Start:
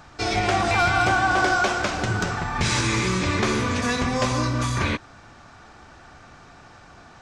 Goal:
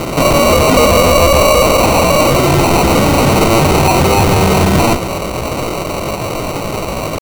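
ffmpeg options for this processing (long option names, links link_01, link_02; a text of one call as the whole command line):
ffmpeg -i in.wav -filter_complex "[0:a]asplit=2[link_01][link_02];[link_02]highpass=frequency=720:poles=1,volume=32dB,asoftclip=type=tanh:threshold=-10.5dB[link_03];[link_01][link_03]amix=inputs=2:normalize=0,lowpass=frequency=5500:poles=1,volume=-6dB,asetrate=68011,aresample=44100,atempo=0.64842,acrusher=samples=26:mix=1:aa=0.000001,volume=7.5dB" out.wav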